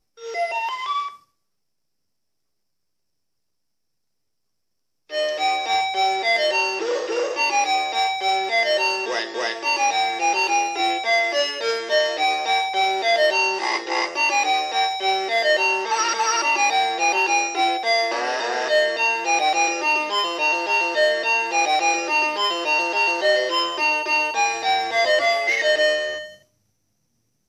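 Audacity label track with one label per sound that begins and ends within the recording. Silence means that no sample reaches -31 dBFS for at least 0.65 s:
5.110000	26.270000	sound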